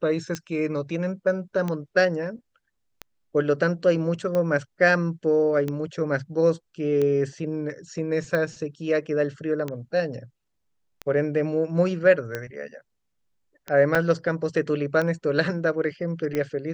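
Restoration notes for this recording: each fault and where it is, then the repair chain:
tick 45 rpm -15 dBFS
13.95 gap 4.2 ms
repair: de-click; interpolate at 13.95, 4.2 ms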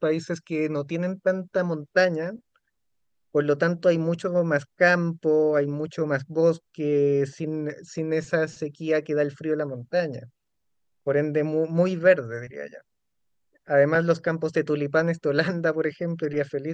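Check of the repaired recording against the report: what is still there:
none

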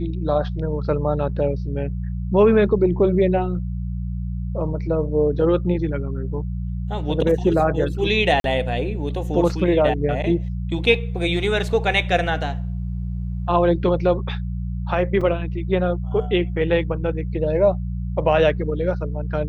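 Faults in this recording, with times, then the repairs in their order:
hum 60 Hz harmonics 3 -26 dBFS
8.4–8.44 gap 42 ms
15.21 gap 4.4 ms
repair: de-hum 60 Hz, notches 3; interpolate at 8.4, 42 ms; interpolate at 15.21, 4.4 ms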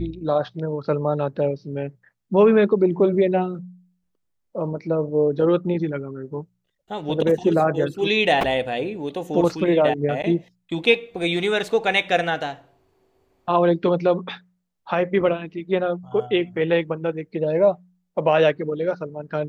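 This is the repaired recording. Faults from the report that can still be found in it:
none

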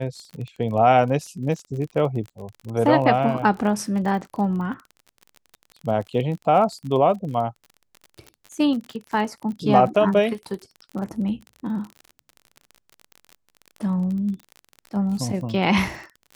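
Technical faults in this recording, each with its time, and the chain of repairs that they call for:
crackle 36/s -31 dBFS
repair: de-click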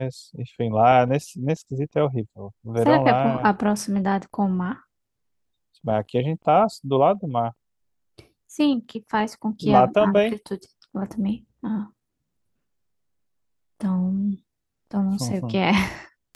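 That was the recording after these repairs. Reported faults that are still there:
none

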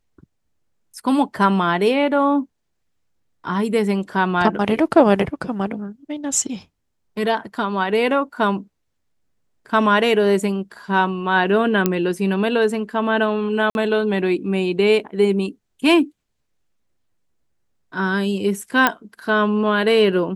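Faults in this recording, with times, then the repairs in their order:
11.86 pop -3 dBFS
13.7–13.75 gap 51 ms
18.87 pop -2 dBFS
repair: de-click; interpolate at 13.7, 51 ms

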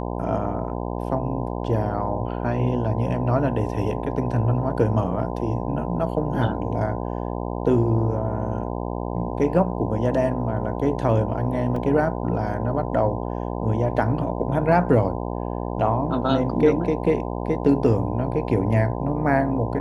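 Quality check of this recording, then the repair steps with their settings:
buzz 60 Hz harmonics 17 -28 dBFS
11.76 gap 3.3 ms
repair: de-hum 60 Hz, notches 17; interpolate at 11.76, 3.3 ms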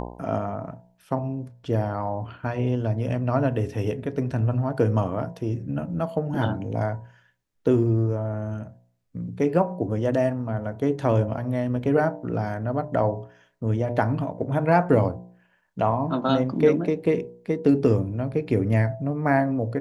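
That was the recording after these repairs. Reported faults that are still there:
none

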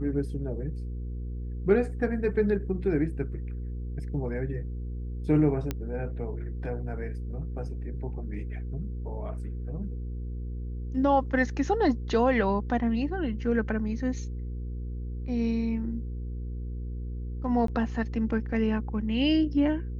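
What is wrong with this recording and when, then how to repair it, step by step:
hum 60 Hz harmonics 8 -34 dBFS
5.71 pop -16 dBFS
17.67–17.68 gap 13 ms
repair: de-click; de-hum 60 Hz, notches 8; interpolate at 17.67, 13 ms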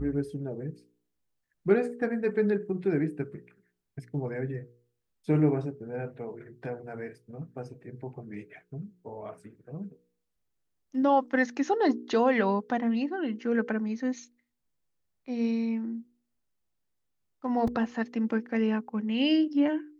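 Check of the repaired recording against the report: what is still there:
5.71 pop

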